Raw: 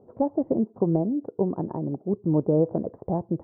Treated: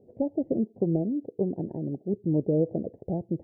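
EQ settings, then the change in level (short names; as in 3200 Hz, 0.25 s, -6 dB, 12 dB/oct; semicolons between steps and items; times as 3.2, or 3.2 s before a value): Butterworth band-stop 1200 Hz, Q 0.72; -2.5 dB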